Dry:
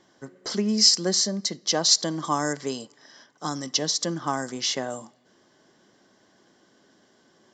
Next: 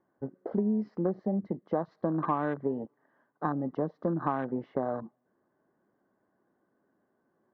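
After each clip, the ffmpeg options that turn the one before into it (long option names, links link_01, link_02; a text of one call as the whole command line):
ffmpeg -i in.wav -af "lowpass=frequency=1500:width=0.5412,lowpass=frequency=1500:width=1.3066,afwtdn=0.0158,acompressor=threshold=-30dB:ratio=4,volume=4dB" out.wav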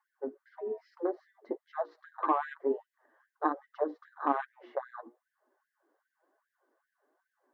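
ffmpeg -i in.wav -af "flanger=delay=4.5:depth=5.2:regen=30:speed=1.1:shape=triangular,bandreject=frequency=60:width_type=h:width=6,bandreject=frequency=120:width_type=h:width=6,bandreject=frequency=180:width_type=h:width=6,bandreject=frequency=240:width_type=h:width=6,bandreject=frequency=300:width_type=h:width=6,bandreject=frequency=360:width_type=h:width=6,bandreject=frequency=420:width_type=h:width=6,bandreject=frequency=480:width_type=h:width=6,afftfilt=real='re*gte(b*sr/1024,240*pow(1600/240,0.5+0.5*sin(2*PI*2.5*pts/sr)))':imag='im*gte(b*sr/1024,240*pow(1600/240,0.5+0.5*sin(2*PI*2.5*pts/sr)))':win_size=1024:overlap=0.75,volume=5.5dB" out.wav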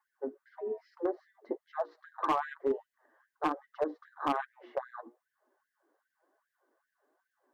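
ffmpeg -i in.wav -af "asoftclip=type=hard:threshold=-22dB" out.wav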